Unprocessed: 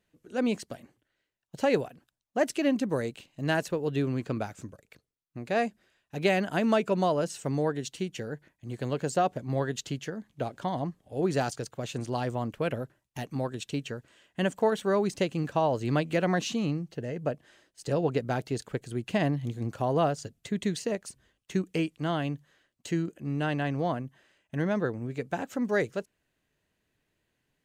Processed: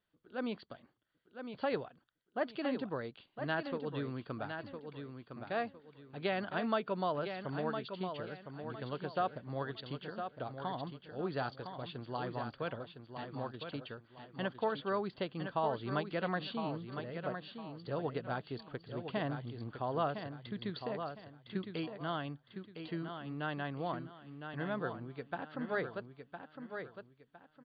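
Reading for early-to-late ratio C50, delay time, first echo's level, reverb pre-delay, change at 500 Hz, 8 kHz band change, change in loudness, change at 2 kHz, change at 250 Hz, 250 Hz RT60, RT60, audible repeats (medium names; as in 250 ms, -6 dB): no reverb, 1009 ms, -7.5 dB, no reverb, -9.0 dB, under -35 dB, -9.5 dB, -6.5 dB, -10.5 dB, no reverb, no reverb, 3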